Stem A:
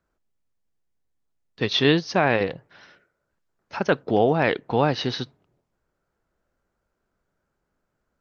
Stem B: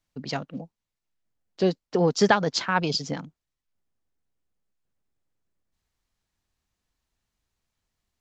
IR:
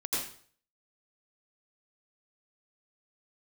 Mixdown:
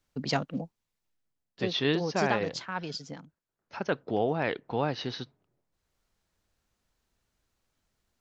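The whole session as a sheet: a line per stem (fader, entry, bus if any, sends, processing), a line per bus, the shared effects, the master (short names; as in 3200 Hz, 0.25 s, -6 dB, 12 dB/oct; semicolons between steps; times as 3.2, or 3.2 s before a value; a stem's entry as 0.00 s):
-8.5 dB, 0.00 s, no send, HPF 51 Hz
+2.0 dB, 0.00 s, no send, auto duck -13 dB, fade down 0.50 s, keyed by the first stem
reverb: off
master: dry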